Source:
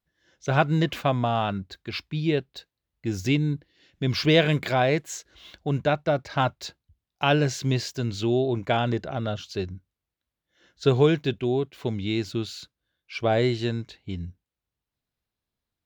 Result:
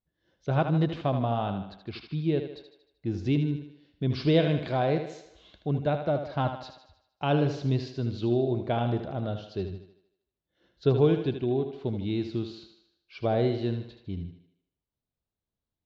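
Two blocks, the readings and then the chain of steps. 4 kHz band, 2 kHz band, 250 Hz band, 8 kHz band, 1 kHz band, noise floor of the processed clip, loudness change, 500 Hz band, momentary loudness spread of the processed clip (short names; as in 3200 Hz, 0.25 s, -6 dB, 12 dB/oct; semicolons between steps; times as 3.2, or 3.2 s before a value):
-9.5 dB, -10.5 dB, -2.0 dB, under -15 dB, -5.0 dB, under -85 dBFS, -3.0 dB, -3.0 dB, 15 LU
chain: LPF 4200 Hz 24 dB/oct; bell 2100 Hz -10.5 dB 2 oct; on a send: thinning echo 77 ms, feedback 53%, high-pass 190 Hz, level -8 dB; on the sum: gain -2 dB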